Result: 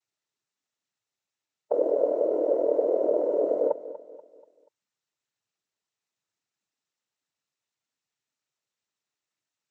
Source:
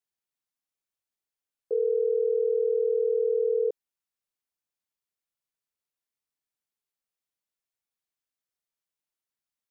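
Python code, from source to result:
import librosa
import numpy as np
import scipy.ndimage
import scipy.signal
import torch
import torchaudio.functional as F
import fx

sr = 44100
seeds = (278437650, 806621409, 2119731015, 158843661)

y = fx.formant_shift(x, sr, semitones=4)
y = fx.noise_vocoder(y, sr, seeds[0], bands=12)
y = fx.echo_feedback(y, sr, ms=241, feedback_pct=42, wet_db=-15.0)
y = y * 10.0 ** (6.0 / 20.0)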